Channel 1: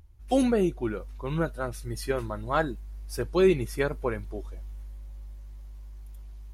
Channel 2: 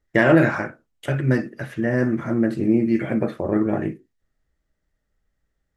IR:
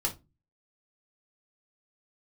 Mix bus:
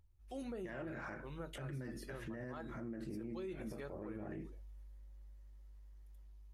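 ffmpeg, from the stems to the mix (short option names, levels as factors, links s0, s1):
-filter_complex "[0:a]volume=0.119,asplit=3[s0][s1][s2];[s1]volume=0.224[s3];[1:a]acompressor=threshold=0.0562:ratio=6,adelay=500,volume=0.501[s4];[s2]apad=whole_len=280844[s5];[s4][s5]sidechaincompress=threshold=0.00398:ratio=8:attack=31:release=451[s6];[2:a]atrim=start_sample=2205[s7];[s3][s7]afir=irnorm=-1:irlink=0[s8];[s0][s6][s8]amix=inputs=3:normalize=0,alimiter=level_in=4.22:limit=0.0631:level=0:latency=1:release=109,volume=0.237"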